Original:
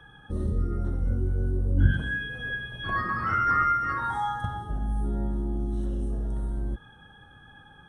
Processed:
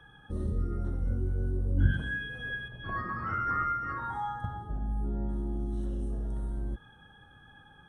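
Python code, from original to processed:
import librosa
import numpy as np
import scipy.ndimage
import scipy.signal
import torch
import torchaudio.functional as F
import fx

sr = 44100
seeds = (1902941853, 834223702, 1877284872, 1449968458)

y = fx.high_shelf(x, sr, hz=2100.0, db=-10.5, at=(2.68, 5.29))
y = F.gain(torch.from_numpy(y), -4.0).numpy()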